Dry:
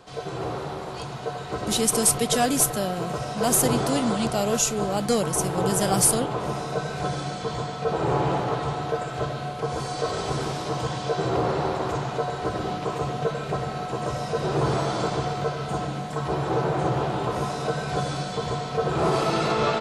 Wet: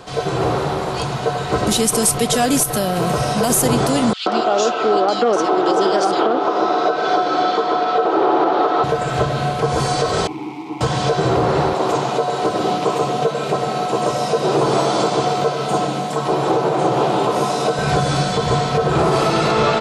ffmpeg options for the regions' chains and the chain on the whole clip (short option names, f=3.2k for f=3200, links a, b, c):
-filter_complex "[0:a]asettb=1/sr,asplit=3[a][b][c];[a]atrim=end=2.634[d];[b]atrim=start=2.63:end=3.5,asetpts=PTS-STARTPTS,afade=t=in:d=0.004:c=qsin,afade=t=out:st=0.866:d=0.004:c=qsin,bandreject=f=7.2k:w=9.6,acompressor=threshold=-25dB:ratio=2.5:attack=3.2:release=140:knee=1:detection=peak,highshelf=f=10k:g=8.5[e];[c]atrim=start=3.496[f];[d][e]acrossfade=d=0.004:c1=hsin:c2=qsin[g];[g][f]acrossfade=d=0.004:c1=qsin:c2=hsin,asettb=1/sr,asplit=3[h][i][j];[h]atrim=end=4.134[k];[i]atrim=start=4.13:end=8.84,asetpts=PTS-STARTPTS,afade=t=in:d=0.004:c=qsin,afade=t=out:st=4.706:d=0.004:c=qsin,highpass=f=270:w=0.5412,highpass=f=270:w=1.3066,equalizer=f=350:t=q:w=4:g=9,equalizer=f=730:t=q:w=4:g=6,equalizer=f=1.3k:t=q:w=4:g=8,equalizer=f=3.4k:t=q:w=4:g=3,lowpass=f=5k:w=0.5412,lowpass=f=5k:w=1.3066,acrossover=split=2400[l][m];[l]adelay=130[n];[n][m]amix=inputs=2:normalize=0,atrim=end_sample=207711[o];[j]atrim=start=8.836[p];[k][o]acrossfade=d=0.004:c1=hsin:c2=qsin[q];[q][p]acrossfade=d=0.004:c1=qsin:c2=hsin,asettb=1/sr,asplit=3[r][s][t];[r]atrim=end=10.274[u];[s]atrim=start=10.27:end=10.81,asetpts=PTS-STARTPTS,afade=t=in:d=0.004:c=qsin,afade=t=out:st=0.536:d=0.004:c=qsin,bandreject=f=50:t=h:w=6,bandreject=f=100:t=h:w=6,bandreject=f=150:t=h:w=6,bandreject=f=200:t=h:w=6,bandreject=f=250:t=h:w=6,acrusher=bits=6:dc=4:mix=0:aa=0.000001,asplit=3[v][w][x];[v]bandpass=f=300:t=q:w=8,volume=0dB[y];[w]bandpass=f=870:t=q:w=8,volume=-6dB[z];[x]bandpass=f=2.24k:t=q:w=8,volume=-9dB[aa];[y][z][aa]amix=inputs=3:normalize=0[ab];[t]atrim=start=10.806[ac];[u][ab]acrossfade=d=0.004:c1=hsin:c2=qsin[ad];[ad][ac]acrossfade=d=0.004:c1=qsin:c2=hsin,asettb=1/sr,asplit=3[ae][af][ag];[ae]atrim=end=11.744[ah];[af]atrim=start=11.74:end=17.79,asetpts=PTS-STARTPTS,afade=t=in:d=0.004:c=qsin,afade=t=out:st=6.046:d=0.004:c=qsin,highpass=220,equalizer=f=1.7k:w=1.9:g=-5.5[ai];[ag]atrim=start=17.786[aj];[ah][ai]acrossfade=d=0.004:c1=hsin:c2=qsin[ak];[ak][aj]acrossfade=d=0.004:c1=qsin:c2=hsin,alimiter=limit=-18.5dB:level=0:latency=1:release=183,acontrast=69,volume=5dB"